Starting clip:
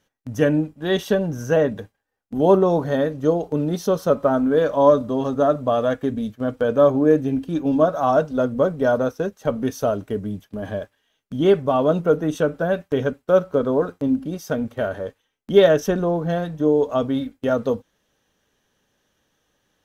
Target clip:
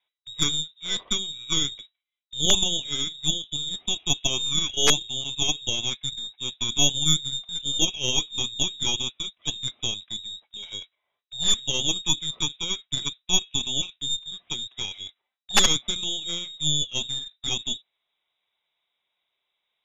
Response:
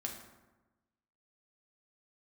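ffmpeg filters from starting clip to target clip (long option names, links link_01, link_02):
-af "aeval=exprs='(mod(1.68*val(0)+1,2)-1)/1.68':channel_layout=same,lowpass=frequency=3300:width_type=q:width=0.5098,lowpass=frequency=3300:width_type=q:width=0.6013,lowpass=frequency=3300:width_type=q:width=0.9,lowpass=frequency=3300:width_type=q:width=2.563,afreqshift=-3900,aeval=exprs='1.19*(cos(1*acos(clip(val(0)/1.19,-1,1)))-cos(1*PI/2))+0.0944*(cos(3*acos(clip(val(0)/1.19,-1,1)))-cos(3*PI/2))+0.531*(cos(4*acos(clip(val(0)/1.19,-1,1)))-cos(4*PI/2))':channel_layout=same,volume=-7dB"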